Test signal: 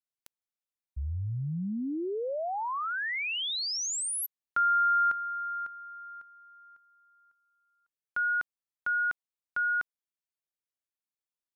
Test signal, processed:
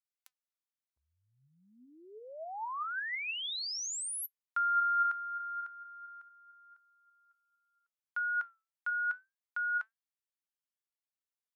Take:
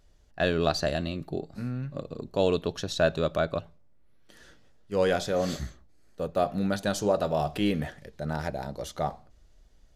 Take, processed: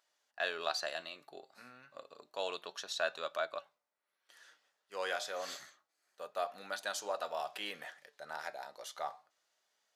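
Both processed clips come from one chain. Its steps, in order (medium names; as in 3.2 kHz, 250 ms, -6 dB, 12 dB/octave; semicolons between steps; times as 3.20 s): Chebyshev high-pass 1 kHz, order 2; flange 0.29 Hz, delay 3 ms, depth 5.4 ms, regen +81%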